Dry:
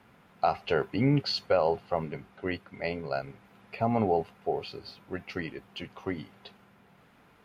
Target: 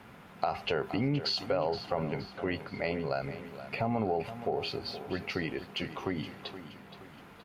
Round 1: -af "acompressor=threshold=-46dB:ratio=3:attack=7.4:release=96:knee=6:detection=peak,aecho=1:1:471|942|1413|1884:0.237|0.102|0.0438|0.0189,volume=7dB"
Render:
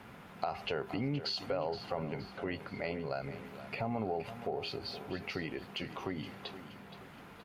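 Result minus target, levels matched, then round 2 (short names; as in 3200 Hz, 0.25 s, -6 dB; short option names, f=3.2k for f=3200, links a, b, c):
compressor: peak gain reduction +5 dB
-af "acompressor=threshold=-38.5dB:ratio=3:attack=7.4:release=96:knee=6:detection=peak,aecho=1:1:471|942|1413|1884:0.237|0.102|0.0438|0.0189,volume=7dB"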